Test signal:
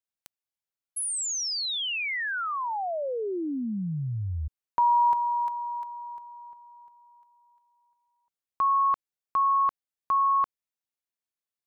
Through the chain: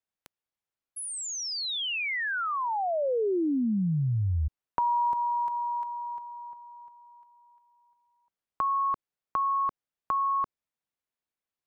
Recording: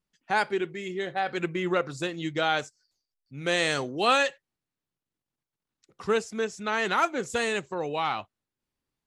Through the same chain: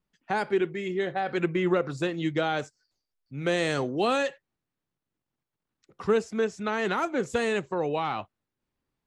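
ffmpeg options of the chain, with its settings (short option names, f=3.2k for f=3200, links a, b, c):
-filter_complex "[0:a]highshelf=f=3.7k:g=-11,acrossover=split=490|5000[a][b][c];[b]acompressor=threshold=-33dB:ratio=3:attack=8:release=176:knee=2.83:detection=peak[d];[a][d][c]amix=inputs=3:normalize=0,volume=4dB"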